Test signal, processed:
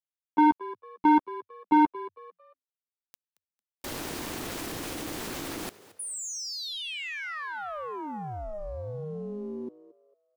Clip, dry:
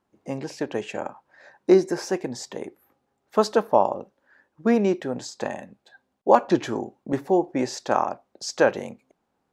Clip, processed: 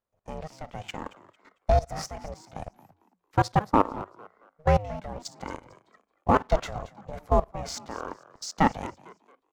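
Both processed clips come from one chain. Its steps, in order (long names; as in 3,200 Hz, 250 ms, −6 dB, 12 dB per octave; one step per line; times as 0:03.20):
ring modulation 310 Hz
leveller curve on the samples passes 1
output level in coarse steps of 18 dB
on a send: echo with shifted repeats 225 ms, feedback 31%, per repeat +87 Hz, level −18 dB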